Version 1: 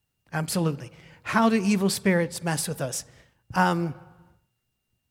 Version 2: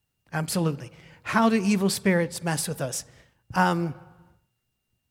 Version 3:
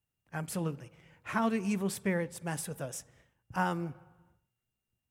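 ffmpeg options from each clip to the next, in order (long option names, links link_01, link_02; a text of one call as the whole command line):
ffmpeg -i in.wav -af anull out.wav
ffmpeg -i in.wav -af "equalizer=frequency=4500:width_type=o:width=0.51:gain=-8.5,volume=-9dB" out.wav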